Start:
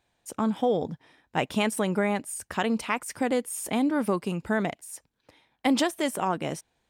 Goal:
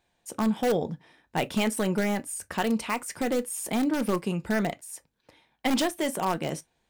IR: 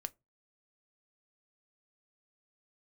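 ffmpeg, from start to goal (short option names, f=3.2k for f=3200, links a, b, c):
-filter_complex "[0:a]bandreject=f=1.3k:w=24,asplit=2[a][b];[b]aeval=exprs='(mod(7.5*val(0)+1,2)-1)/7.5':c=same,volume=-8.5dB[c];[a][c]amix=inputs=2:normalize=0[d];[1:a]atrim=start_sample=2205,atrim=end_sample=3528[e];[d][e]afir=irnorm=-1:irlink=0"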